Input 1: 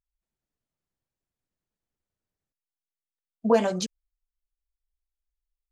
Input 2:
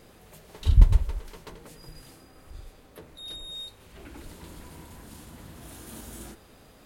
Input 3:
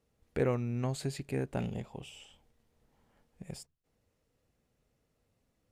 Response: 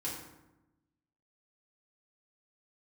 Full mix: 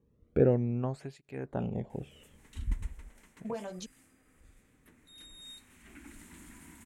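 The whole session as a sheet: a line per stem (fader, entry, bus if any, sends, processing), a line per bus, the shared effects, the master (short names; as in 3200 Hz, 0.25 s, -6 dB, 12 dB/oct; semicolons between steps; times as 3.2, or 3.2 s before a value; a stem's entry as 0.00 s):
-12.5 dB, 0.00 s, no send, compressor 2.5:1, threshold -23 dBFS, peak gain reduction 6.5 dB
-10.0 dB, 1.90 s, no send, graphic EQ 125/250/500/2000/4000/8000 Hz -6/+12/-12/+11/-5/+11 dB; auto duck -7 dB, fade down 1.70 s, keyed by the third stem
+1.0 dB, 0.00 s, no send, tilt -4.5 dB/oct; tape flanging out of phase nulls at 0.41 Hz, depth 1.5 ms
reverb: off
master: bell 4800 Hz -6 dB 0.21 oct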